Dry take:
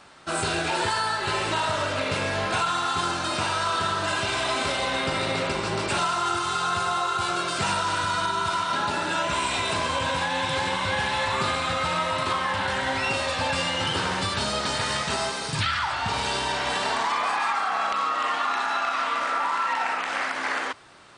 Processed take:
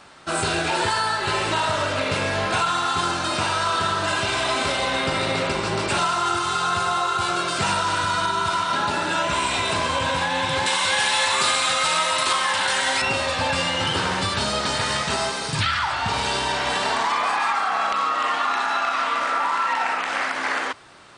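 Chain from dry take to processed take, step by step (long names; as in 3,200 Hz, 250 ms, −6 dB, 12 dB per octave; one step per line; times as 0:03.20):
0:10.66–0:13.02: RIAA equalisation recording
level +3 dB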